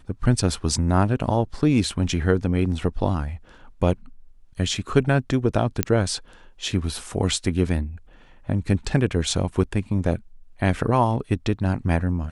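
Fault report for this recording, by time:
0:05.83: click −4 dBFS

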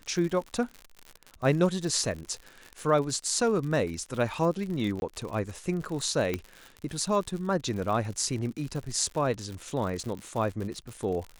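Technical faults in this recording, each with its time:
surface crackle 81 per second −34 dBFS
0:05.00–0:05.02: drop-out 21 ms
0:06.34: click −15 dBFS

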